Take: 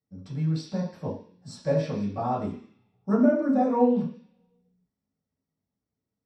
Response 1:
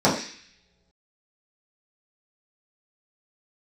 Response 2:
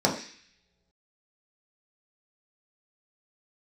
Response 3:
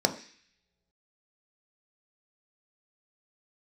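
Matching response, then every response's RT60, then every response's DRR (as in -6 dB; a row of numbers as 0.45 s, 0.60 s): 1; no single decay rate, no single decay rate, no single decay rate; -9.0 dB, -2.5 dB, 5.5 dB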